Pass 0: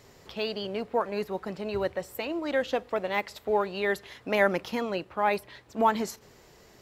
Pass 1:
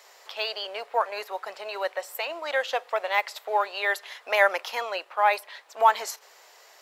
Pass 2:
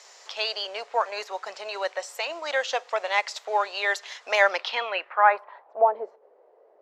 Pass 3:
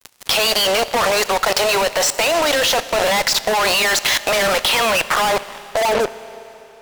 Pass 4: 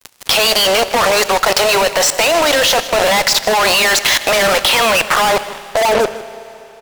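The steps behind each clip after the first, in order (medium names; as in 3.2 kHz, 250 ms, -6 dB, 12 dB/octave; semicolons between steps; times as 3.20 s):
high-pass 620 Hz 24 dB/octave; trim +5.5 dB
low-pass sweep 6.5 kHz -> 490 Hz, 4.36–5.95 s
fuzz box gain 46 dB, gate -43 dBFS; level held to a coarse grid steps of 22 dB; Schroeder reverb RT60 3.4 s, combs from 25 ms, DRR 15 dB; trim +5.5 dB
delay 156 ms -16 dB; trim +4 dB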